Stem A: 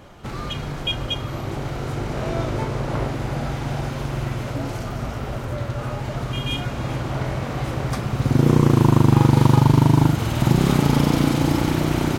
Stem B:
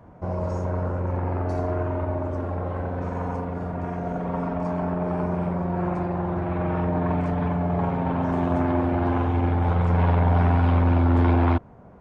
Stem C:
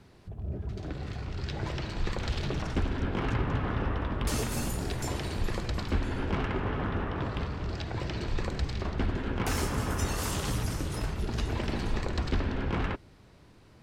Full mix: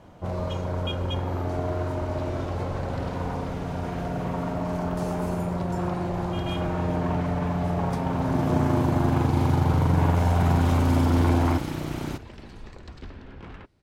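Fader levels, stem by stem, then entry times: −10.5, −2.5, −12.0 decibels; 0.00, 0.00, 0.70 seconds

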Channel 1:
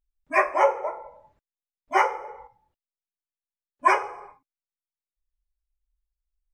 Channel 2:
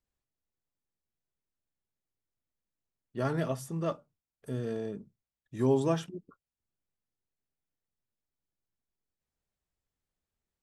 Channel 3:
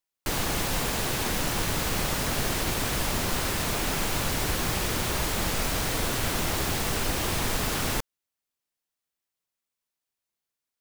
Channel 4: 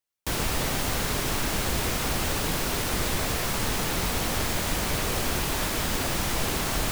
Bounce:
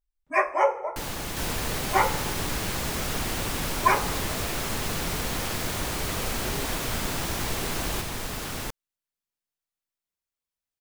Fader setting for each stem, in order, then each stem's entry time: −2.0, −14.5, −5.5, −4.5 decibels; 0.00, 0.85, 0.70, 1.10 seconds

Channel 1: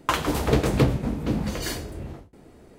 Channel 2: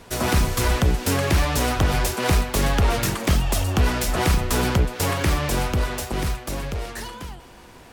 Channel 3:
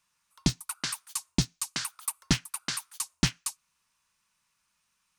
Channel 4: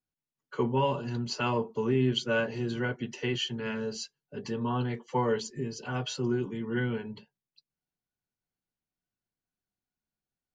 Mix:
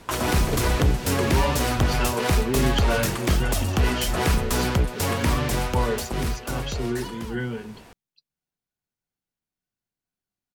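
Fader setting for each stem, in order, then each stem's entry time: −6.5, −2.0, −16.5, +1.0 decibels; 0.00, 0.00, 2.30, 0.60 seconds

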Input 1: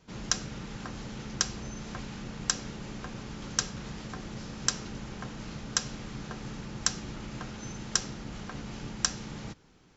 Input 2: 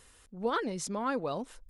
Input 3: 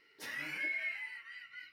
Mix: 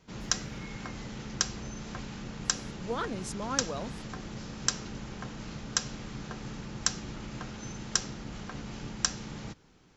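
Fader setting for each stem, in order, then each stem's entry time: −0.5, −3.0, −14.5 decibels; 0.00, 2.45, 0.00 seconds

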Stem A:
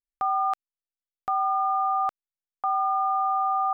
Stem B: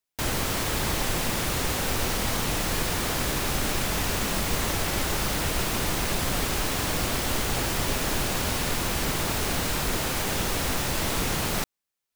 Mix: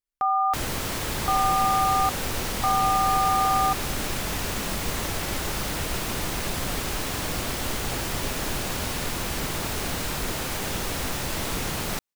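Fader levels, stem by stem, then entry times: +2.0, −2.0 decibels; 0.00, 0.35 seconds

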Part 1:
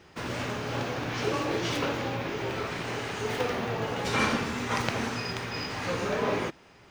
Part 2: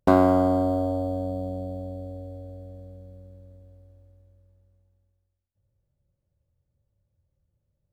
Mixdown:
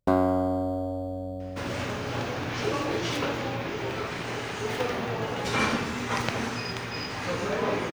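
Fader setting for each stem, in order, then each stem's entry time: +0.5, −5.0 decibels; 1.40, 0.00 seconds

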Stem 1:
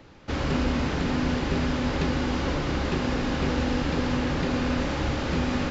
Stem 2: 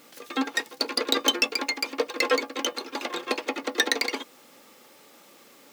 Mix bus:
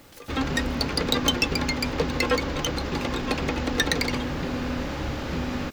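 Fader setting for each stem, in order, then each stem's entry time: −3.0, −1.0 decibels; 0.00, 0.00 seconds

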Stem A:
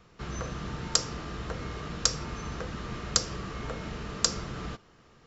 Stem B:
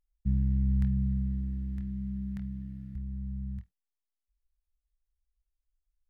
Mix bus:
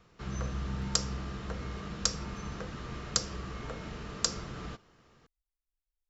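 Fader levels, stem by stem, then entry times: −4.0, −10.0 decibels; 0.00, 0.00 seconds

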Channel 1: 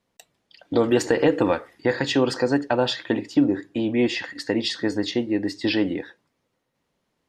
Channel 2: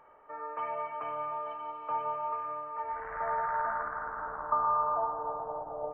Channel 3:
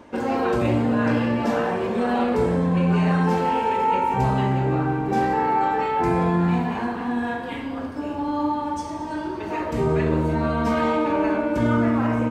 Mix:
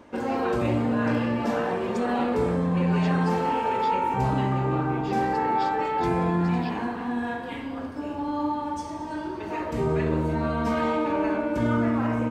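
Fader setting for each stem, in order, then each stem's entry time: −17.5, −9.0, −3.5 decibels; 0.95, 0.00, 0.00 seconds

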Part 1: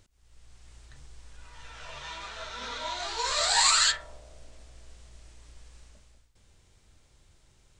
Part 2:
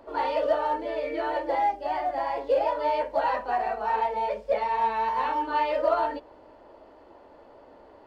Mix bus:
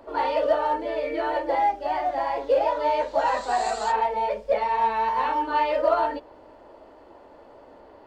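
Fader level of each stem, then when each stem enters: −17.0, +2.5 decibels; 0.00, 0.00 seconds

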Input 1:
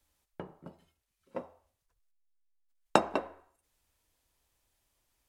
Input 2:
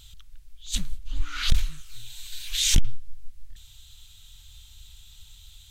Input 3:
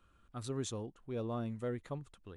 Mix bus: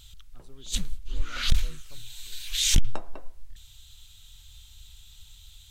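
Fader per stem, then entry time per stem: −14.5, −1.0, −15.5 decibels; 0.00, 0.00, 0.00 seconds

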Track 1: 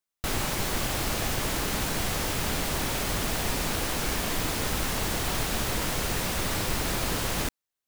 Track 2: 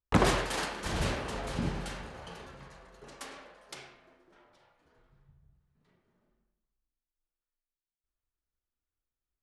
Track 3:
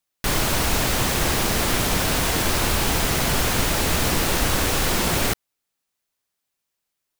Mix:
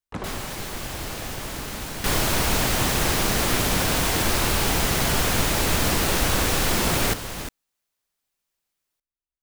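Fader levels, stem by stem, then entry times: −4.0, −9.0, −1.0 decibels; 0.00, 0.00, 1.80 seconds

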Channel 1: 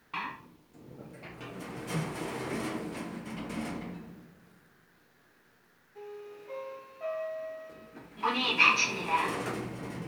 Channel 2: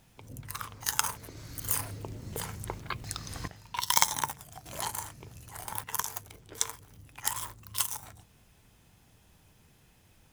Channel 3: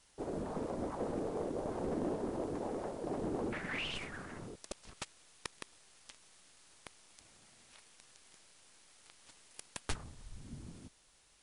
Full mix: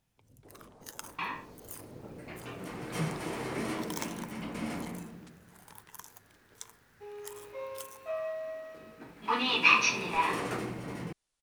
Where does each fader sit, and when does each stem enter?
0.0, −16.0, −16.5 decibels; 1.05, 0.00, 0.25 seconds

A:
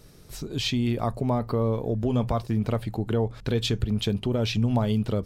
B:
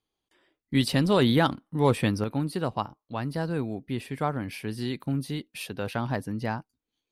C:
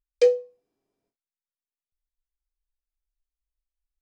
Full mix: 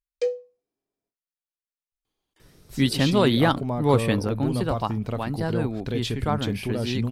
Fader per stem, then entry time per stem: −3.0, +2.0, −7.0 decibels; 2.40, 2.05, 0.00 seconds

